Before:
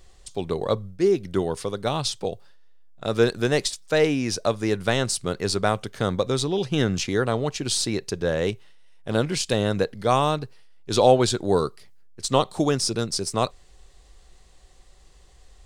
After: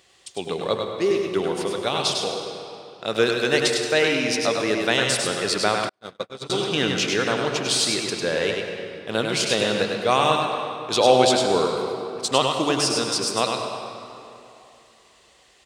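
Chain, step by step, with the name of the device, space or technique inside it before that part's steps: PA in a hall (high-pass 110 Hz 12 dB/octave; peaking EQ 2.7 kHz +7 dB 1.2 oct; delay 101 ms -4.5 dB; reverberation RT60 2.9 s, pre-delay 78 ms, DRR 4.5 dB); 5.89–6.50 s: gate -18 dBFS, range -47 dB; bass shelf 180 Hz -10.5 dB

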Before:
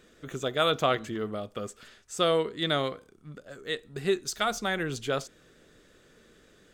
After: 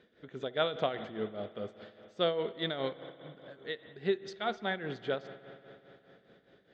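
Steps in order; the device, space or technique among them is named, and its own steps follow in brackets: combo amplifier with spring reverb and tremolo (spring tank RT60 3.7 s, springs 59 ms, chirp 35 ms, DRR 11.5 dB; tremolo 4.9 Hz, depth 69%; cabinet simulation 100–3700 Hz, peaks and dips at 140 Hz -5 dB, 310 Hz -4 dB, 1.2 kHz -9 dB, 2.6 kHz -7 dB); trim -1.5 dB

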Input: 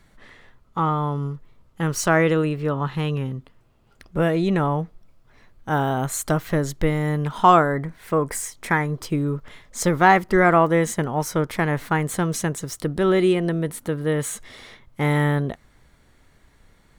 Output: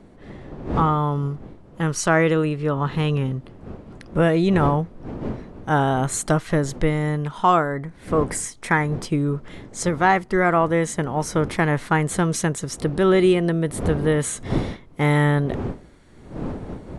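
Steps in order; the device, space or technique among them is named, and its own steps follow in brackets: smartphone video outdoors (wind noise 320 Hz -36 dBFS; level rider gain up to 8 dB; trim -4 dB; AAC 96 kbps 24 kHz)

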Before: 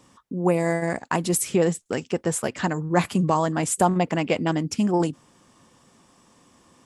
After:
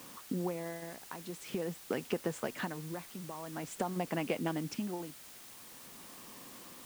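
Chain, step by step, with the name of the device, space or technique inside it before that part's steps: medium wave at night (band-pass 150–4100 Hz; compression, threshold -34 dBFS, peak gain reduction 19 dB; tremolo 0.47 Hz, depth 75%; whistle 9 kHz -68 dBFS; white noise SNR 13 dB); trim +3 dB

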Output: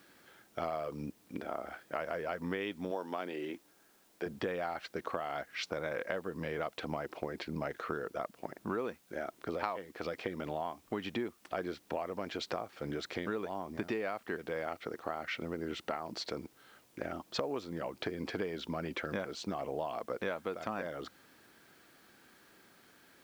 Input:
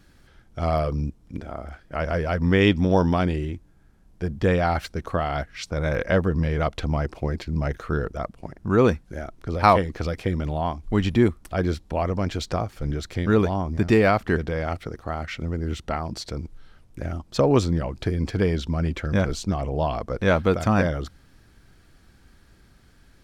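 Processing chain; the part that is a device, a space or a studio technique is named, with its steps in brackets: 2.91–4.26 s: high-pass 260 Hz 12 dB/octave; baby monitor (band-pass 320–4200 Hz; compression 10:1, threshold -33 dBFS, peak gain reduction 22.5 dB; white noise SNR 29 dB)

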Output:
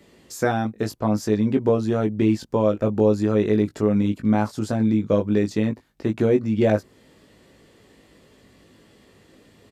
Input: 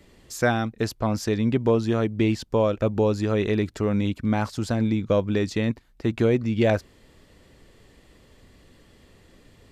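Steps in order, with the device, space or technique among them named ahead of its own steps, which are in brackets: dynamic bell 3.1 kHz, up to -6 dB, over -44 dBFS, Q 0.71; doubling 19 ms -5 dB; filter by subtraction (in parallel: low-pass 230 Hz 12 dB/octave + polarity flip)

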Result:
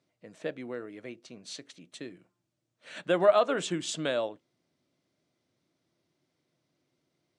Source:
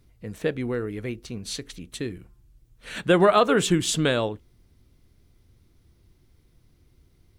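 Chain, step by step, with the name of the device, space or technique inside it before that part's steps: television speaker (cabinet simulation 170–8300 Hz, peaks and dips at 210 Hz -7 dB, 430 Hz -5 dB, 610 Hz +9 dB); trim -8.5 dB

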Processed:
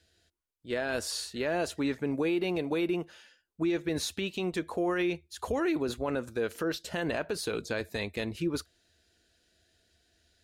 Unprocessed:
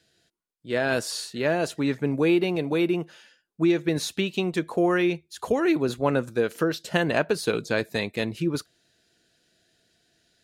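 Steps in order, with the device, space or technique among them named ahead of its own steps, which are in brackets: car stereo with a boomy subwoofer (resonant low shelf 100 Hz +8 dB, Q 3; peak limiter -18.5 dBFS, peak gain reduction 9.5 dB); trim -3 dB

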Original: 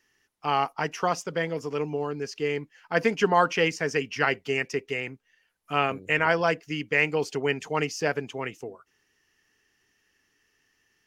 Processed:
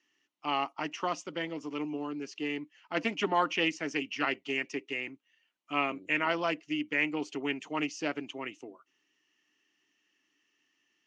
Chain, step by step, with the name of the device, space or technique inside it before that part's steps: 6.59–7.83 s: dynamic bell 4.3 kHz, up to -5 dB, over -41 dBFS, Q 1.2; full-range speaker at full volume (loudspeaker Doppler distortion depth 0.15 ms; cabinet simulation 260–6700 Hz, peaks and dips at 300 Hz +8 dB, 460 Hz -10 dB, 780 Hz -4 dB, 1.6 kHz -7 dB, 2.9 kHz +5 dB, 5 kHz -6 dB); trim -4 dB

